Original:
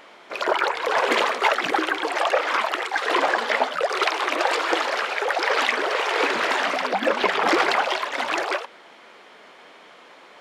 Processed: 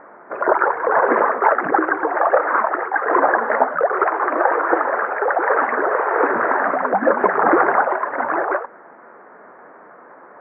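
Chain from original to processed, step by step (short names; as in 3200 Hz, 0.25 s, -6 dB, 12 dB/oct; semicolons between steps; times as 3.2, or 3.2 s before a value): steep low-pass 1700 Hz 48 dB/oct; gain +6 dB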